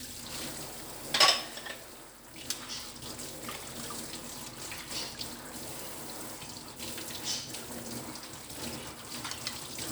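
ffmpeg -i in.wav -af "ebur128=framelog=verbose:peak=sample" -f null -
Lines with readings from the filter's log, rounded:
Integrated loudness:
  I:         -34.4 LUFS
  Threshold: -44.6 LUFS
Loudness range:
  LRA:         7.9 LU
  Threshold: -55.8 LUFS
  LRA low:   -39.0 LUFS
  LRA high:  -31.1 LUFS
Sample peak:
  Peak:       -9.7 dBFS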